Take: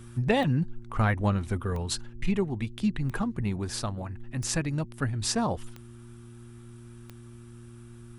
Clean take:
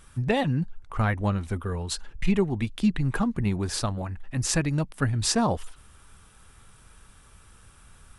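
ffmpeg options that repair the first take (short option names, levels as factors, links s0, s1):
-af "adeclick=t=4,bandreject=f=117.8:t=h:w=4,bandreject=f=235.6:t=h:w=4,bandreject=f=353.4:t=h:w=4,asetnsamples=n=441:p=0,asendcmd='2.01 volume volume 4dB',volume=1"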